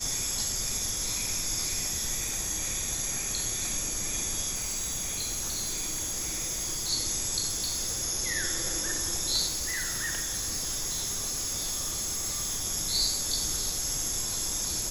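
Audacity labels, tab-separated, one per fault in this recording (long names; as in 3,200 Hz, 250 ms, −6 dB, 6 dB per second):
4.540000	6.900000	clipping −28.5 dBFS
7.480000	8.040000	clipping −26.5 dBFS
9.470000	12.650000	clipping −28 dBFS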